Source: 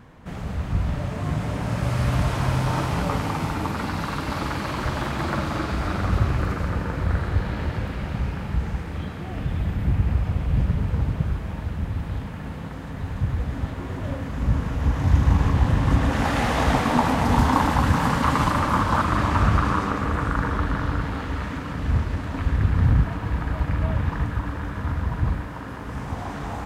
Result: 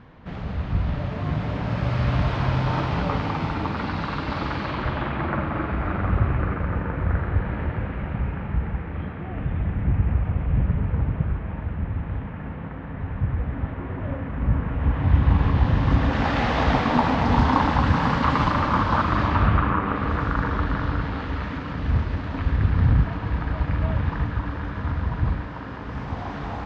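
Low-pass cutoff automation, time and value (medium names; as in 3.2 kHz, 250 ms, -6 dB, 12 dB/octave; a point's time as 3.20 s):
low-pass 24 dB/octave
4.60 s 4.5 kHz
5.37 s 2.5 kHz
14.66 s 2.5 kHz
15.76 s 4.9 kHz
19.24 s 4.9 kHz
19.80 s 2.6 kHz
20.13 s 4.9 kHz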